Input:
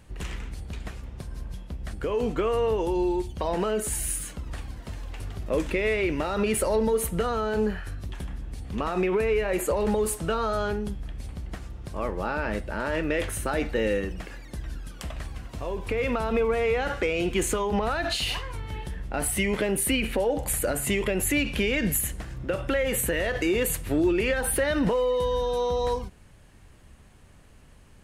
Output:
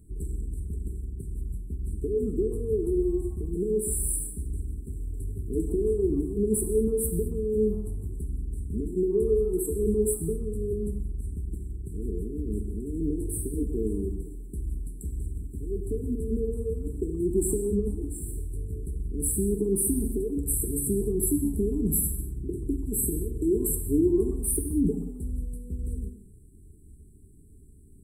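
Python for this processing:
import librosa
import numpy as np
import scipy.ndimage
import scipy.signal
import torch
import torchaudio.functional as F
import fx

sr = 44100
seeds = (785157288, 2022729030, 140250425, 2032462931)

y = fx.brickwall_bandstop(x, sr, low_hz=450.0, high_hz=7500.0)
y = fx.echo_tape(y, sr, ms=130, feedback_pct=48, wet_db=-15.5, lp_hz=3400.0, drive_db=18.0, wow_cents=25)
y = fx.rev_gated(y, sr, seeds[0], gate_ms=260, shape='falling', drr_db=5.5)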